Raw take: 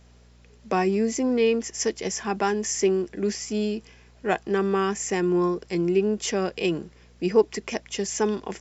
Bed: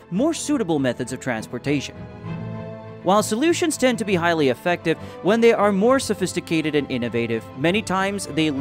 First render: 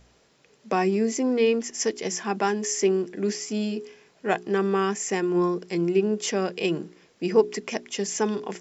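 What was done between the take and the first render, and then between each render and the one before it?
de-hum 60 Hz, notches 7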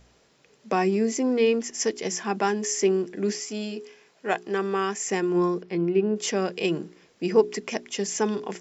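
3.40–5.06 s: bass shelf 240 Hz -10 dB; 5.62–6.16 s: distance through air 240 m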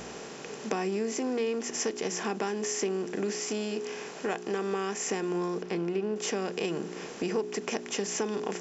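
spectral levelling over time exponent 0.6; compression 3:1, threshold -31 dBFS, peak gain reduction 14.5 dB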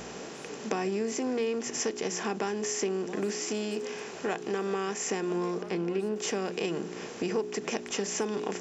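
add bed -30 dB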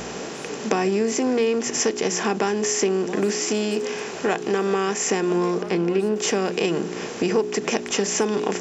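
trim +9 dB

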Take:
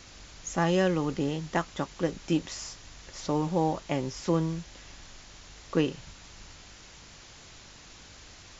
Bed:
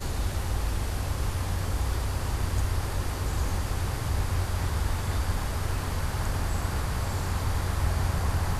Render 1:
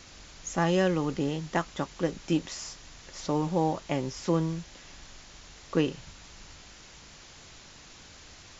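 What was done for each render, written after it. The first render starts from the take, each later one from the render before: de-hum 50 Hz, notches 2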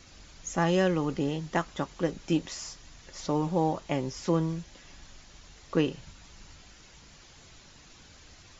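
noise reduction 6 dB, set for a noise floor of -51 dBFS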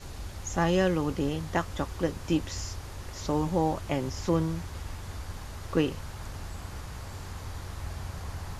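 add bed -11 dB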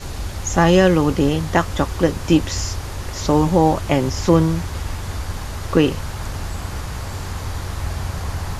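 trim +12 dB; peak limiter -3 dBFS, peak gain reduction 2.5 dB

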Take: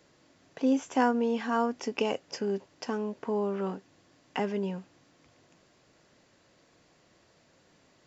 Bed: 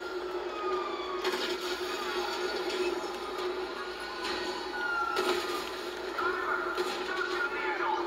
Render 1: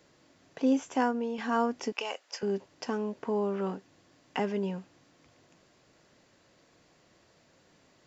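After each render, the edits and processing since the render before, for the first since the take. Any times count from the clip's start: 0.72–1.38 s: fade out, to -7 dB; 1.92–2.43 s: high-pass 810 Hz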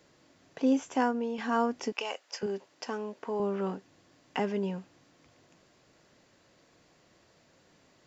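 2.46–3.40 s: high-pass 410 Hz 6 dB/octave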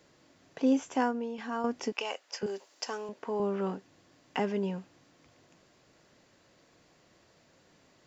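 0.88–1.64 s: fade out linear, to -8 dB; 2.46–3.09 s: tone controls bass -15 dB, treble +8 dB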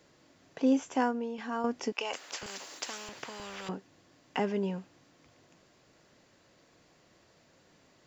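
2.13–3.69 s: spectrum-flattening compressor 4:1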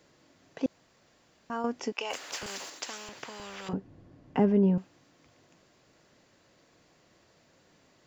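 0.66–1.50 s: room tone; 2.10–2.70 s: companding laws mixed up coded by mu; 3.73–4.78 s: tilt EQ -4.5 dB/octave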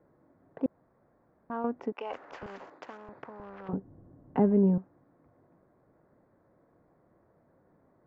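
local Wiener filter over 15 samples; low-pass 1.4 kHz 12 dB/octave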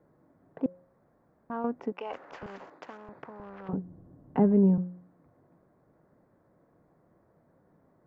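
peaking EQ 170 Hz +4 dB 0.53 oct; de-hum 179.6 Hz, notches 3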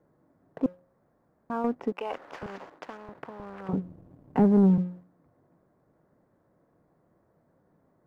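waveshaping leveller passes 1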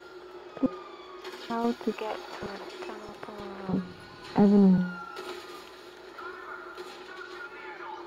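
add bed -10 dB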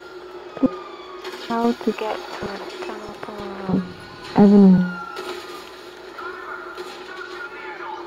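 trim +8.5 dB

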